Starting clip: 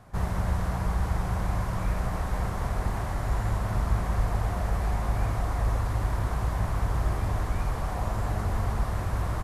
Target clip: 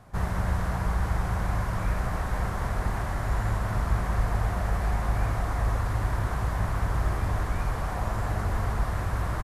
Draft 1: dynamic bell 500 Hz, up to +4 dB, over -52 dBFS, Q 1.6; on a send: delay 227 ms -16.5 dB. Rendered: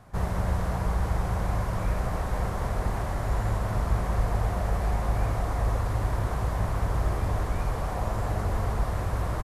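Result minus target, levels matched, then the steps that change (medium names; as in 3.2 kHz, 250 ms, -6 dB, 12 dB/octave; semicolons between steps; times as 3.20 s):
2 kHz band -3.5 dB
change: dynamic bell 1.6 kHz, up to +4 dB, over -52 dBFS, Q 1.6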